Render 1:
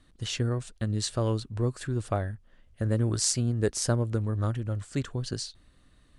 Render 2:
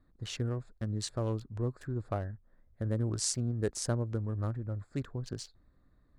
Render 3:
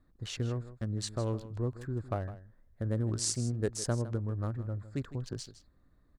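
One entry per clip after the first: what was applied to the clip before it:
adaptive Wiener filter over 15 samples; level −5.5 dB
single-tap delay 158 ms −14.5 dB

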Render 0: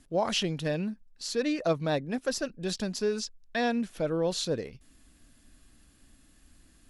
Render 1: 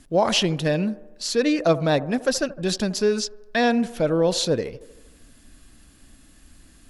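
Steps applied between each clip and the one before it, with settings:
delay with a band-pass on its return 77 ms, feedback 60%, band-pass 620 Hz, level −15 dB
level +8 dB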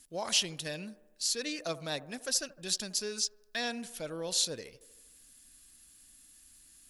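first-order pre-emphasis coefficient 0.9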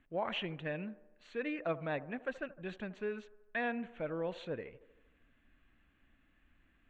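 inverse Chebyshev low-pass filter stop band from 4,700 Hz, stop band 40 dB
level +1 dB

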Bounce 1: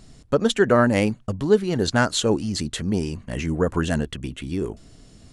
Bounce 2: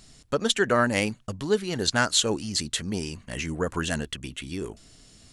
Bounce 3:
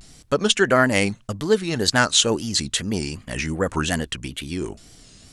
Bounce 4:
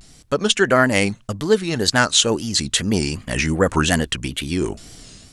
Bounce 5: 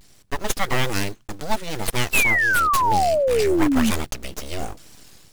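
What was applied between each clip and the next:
tilt shelving filter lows −5.5 dB, about 1,300 Hz; level −2 dB
tape wow and flutter 120 cents; level +5 dB
automatic gain control gain up to 7 dB
one scale factor per block 5 bits; full-wave rectification; sound drawn into the spectrogram fall, 0:02.13–0:03.91, 210–2,700 Hz −15 dBFS; level −4 dB

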